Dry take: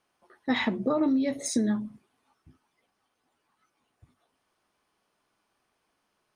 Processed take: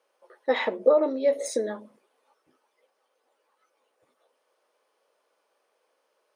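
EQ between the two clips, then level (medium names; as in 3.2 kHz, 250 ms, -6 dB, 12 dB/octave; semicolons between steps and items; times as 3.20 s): band-stop 710 Hz, Q 12; dynamic bell 6 kHz, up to -4 dB, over -48 dBFS, Q 0.87; resonant high-pass 510 Hz, resonance Q 4.9; 0.0 dB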